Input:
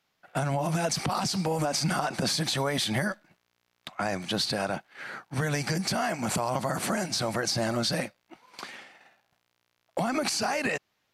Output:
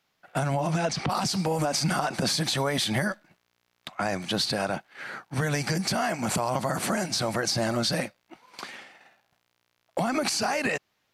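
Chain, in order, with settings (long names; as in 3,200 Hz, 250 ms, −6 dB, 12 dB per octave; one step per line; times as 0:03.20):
0:00.60–0:01.08: low-pass filter 9,300 Hz → 3,800 Hz 12 dB per octave
level +1.5 dB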